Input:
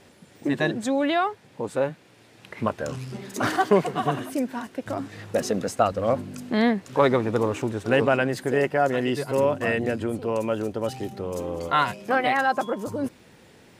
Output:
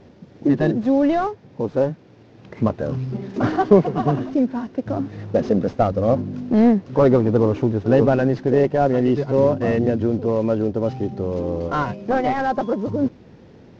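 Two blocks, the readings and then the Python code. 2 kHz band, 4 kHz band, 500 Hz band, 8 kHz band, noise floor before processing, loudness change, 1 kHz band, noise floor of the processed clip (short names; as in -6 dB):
-5.0 dB, n/a, +5.0 dB, under -10 dB, -54 dBFS, +5.0 dB, +1.0 dB, -48 dBFS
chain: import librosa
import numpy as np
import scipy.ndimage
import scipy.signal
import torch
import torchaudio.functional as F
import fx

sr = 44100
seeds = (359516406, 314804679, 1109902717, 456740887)

y = fx.cvsd(x, sr, bps=32000)
y = fx.tilt_shelf(y, sr, db=9.0, hz=930.0)
y = y * 10.0 ** (1.0 / 20.0)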